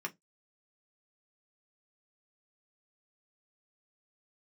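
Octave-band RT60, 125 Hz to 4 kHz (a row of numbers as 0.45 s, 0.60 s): 0.25 s, 0.20 s, 0.15 s, 0.15 s, 0.15 s, 0.15 s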